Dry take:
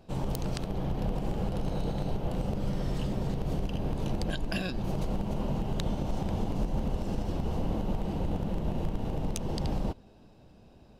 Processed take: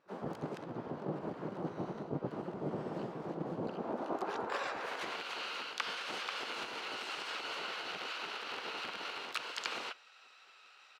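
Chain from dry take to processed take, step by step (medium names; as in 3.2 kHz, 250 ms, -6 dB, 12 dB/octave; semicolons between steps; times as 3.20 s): spectral gate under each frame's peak -20 dB weak; band-pass sweep 330 Hz -> 2.5 kHz, 3.64–5.23 s; reverse; compression 16:1, threshold -49 dBFS, peak gain reduction 9 dB; reverse; hum notches 60/120 Hz; harmony voices -12 st -1 dB, +7 st -5 dB; trim +13.5 dB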